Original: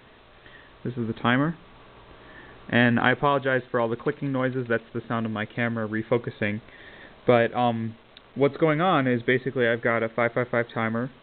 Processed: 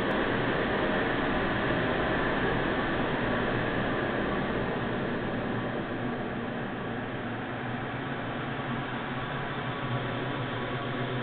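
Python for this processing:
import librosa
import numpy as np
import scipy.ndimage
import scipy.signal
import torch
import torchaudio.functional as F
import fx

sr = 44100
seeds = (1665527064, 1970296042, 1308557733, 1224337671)

p1 = fx.bin_compress(x, sr, power=0.6)
p2 = fx.over_compress(p1, sr, threshold_db=-30.0, ratio=-1.0)
p3 = fx.phaser_stages(p2, sr, stages=12, low_hz=360.0, high_hz=3300.0, hz=3.1, feedback_pct=25)
p4 = fx.paulstretch(p3, sr, seeds[0], factor=9.9, window_s=1.0, from_s=2.25)
y = p4 + fx.echo_single(p4, sr, ms=113, db=-7.5, dry=0)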